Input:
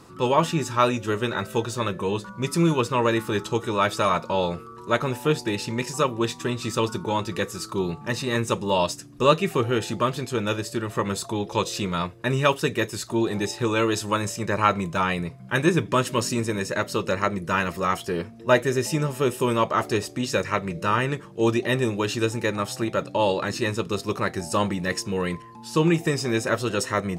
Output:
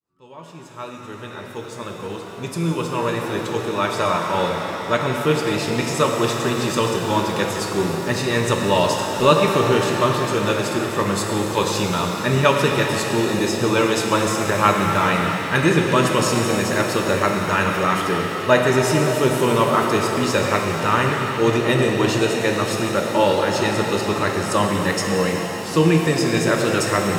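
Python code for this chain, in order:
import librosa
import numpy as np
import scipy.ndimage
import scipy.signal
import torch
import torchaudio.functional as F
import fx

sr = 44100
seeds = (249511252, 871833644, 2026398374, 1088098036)

y = fx.fade_in_head(x, sr, length_s=5.88)
y = fx.rev_shimmer(y, sr, seeds[0], rt60_s=3.8, semitones=7, shimmer_db=-8, drr_db=1.0)
y = y * 10.0 ** (3.0 / 20.0)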